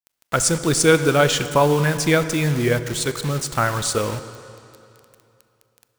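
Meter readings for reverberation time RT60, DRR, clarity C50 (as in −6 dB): 2.8 s, 11.0 dB, 12.0 dB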